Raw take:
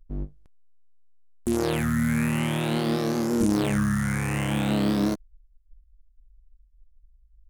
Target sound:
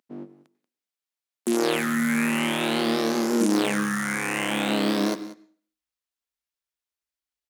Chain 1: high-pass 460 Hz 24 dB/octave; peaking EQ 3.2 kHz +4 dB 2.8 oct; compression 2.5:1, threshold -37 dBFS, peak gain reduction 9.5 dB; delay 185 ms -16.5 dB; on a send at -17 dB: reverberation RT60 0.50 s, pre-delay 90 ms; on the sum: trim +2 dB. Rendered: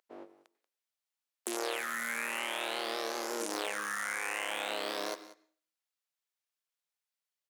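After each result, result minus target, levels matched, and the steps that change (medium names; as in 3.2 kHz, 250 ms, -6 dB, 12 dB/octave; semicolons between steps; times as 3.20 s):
250 Hz band -11.5 dB; compression: peak gain reduction +9.5 dB
change: high-pass 220 Hz 24 dB/octave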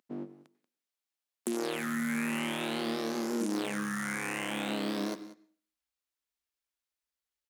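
compression: peak gain reduction +11.5 dB
remove: compression 2.5:1, threshold -37 dBFS, peak gain reduction 11.5 dB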